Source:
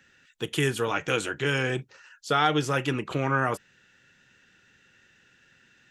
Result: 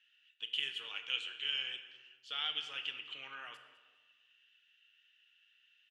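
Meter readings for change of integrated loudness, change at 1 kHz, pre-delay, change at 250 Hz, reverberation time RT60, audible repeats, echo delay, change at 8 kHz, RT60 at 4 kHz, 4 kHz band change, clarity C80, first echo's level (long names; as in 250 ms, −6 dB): −11.5 dB, −23.5 dB, 18 ms, −37.0 dB, 1.4 s, 2, 204 ms, −23.5 dB, 0.85 s, −1.5 dB, 10.5 dB, −17.5 dB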